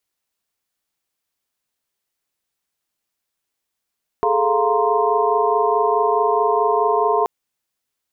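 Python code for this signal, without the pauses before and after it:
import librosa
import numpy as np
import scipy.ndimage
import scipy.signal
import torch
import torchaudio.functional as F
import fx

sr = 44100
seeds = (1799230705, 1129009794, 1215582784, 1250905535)

y = fx.chord(sr, length_s=3.03, notes=(68, 69, 77, 82, 84), wave='sine', level_db=-21.0)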